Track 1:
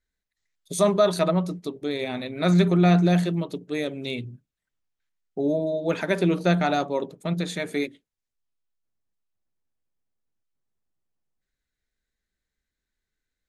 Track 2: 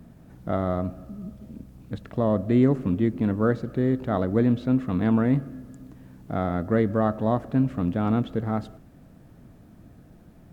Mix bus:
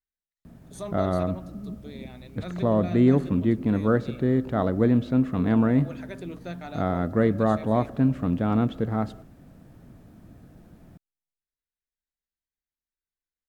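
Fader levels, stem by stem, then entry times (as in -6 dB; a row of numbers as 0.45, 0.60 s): -16.0, +0.5 dB; 0.00, 0.45 s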